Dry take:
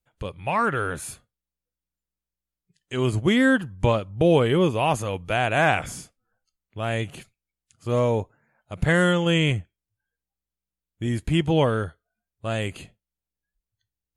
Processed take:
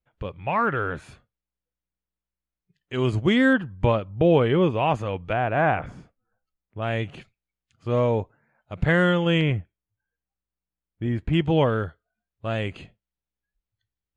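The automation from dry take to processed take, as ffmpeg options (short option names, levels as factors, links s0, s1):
-af "asetnsamples=n=441:p=0,asendcmd='2.94 lowpass f 4900;3.53 lowpass f 2900;5.33 lowpass f 1500;6.82 lowpass f 3500;9.41 lowpass f 2100;11.33 lowpass f 3500',lowpass=2800"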